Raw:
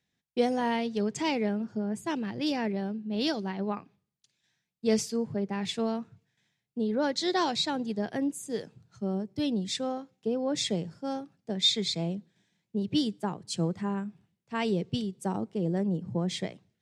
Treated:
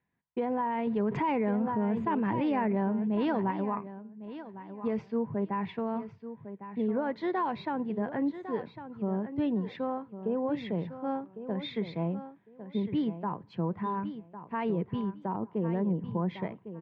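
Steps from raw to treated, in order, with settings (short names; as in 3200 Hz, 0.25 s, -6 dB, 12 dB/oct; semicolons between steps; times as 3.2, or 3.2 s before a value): LPF 2200 Hz 24 dB/oct; bell 990 Hz +13 dB 0.22 oct; limiter -22.5 dBFS, peak gain reduction 11.5 dB; feedback echo 1.104 s, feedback 19%, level -11.5 dB; 0.87–3.51 fast leveller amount 70%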